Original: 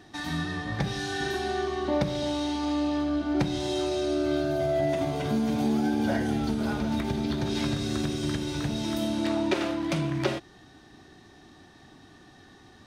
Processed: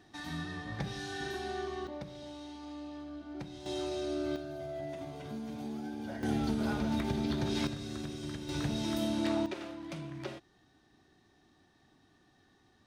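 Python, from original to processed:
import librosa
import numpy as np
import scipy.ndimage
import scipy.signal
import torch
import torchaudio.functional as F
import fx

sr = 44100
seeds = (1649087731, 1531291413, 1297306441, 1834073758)

y = fx.gain(x, sr, db=fx.steps((0.0, -8.5), (1.87, -17.0), (3.66, -8.0), (4.36, -14.5), (6.23, -4.0), (7.67, -11.0), (8.49, -4.0), (9.46, -14.0)))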